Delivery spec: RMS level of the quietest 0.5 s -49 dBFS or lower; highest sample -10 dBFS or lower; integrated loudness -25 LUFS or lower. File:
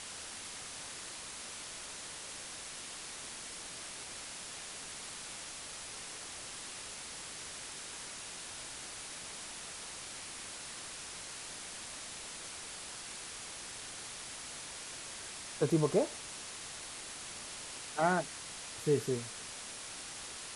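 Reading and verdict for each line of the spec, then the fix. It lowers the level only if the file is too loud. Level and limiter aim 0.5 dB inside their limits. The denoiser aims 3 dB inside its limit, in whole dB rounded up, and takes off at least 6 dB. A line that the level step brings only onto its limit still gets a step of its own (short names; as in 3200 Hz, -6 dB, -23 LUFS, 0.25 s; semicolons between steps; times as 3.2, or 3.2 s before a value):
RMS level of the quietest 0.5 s -46 dBFS: fail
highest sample -16.5 dBFS: OK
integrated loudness -40.0 LUFS: OK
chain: denoiser 6 dB, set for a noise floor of -46 dBFS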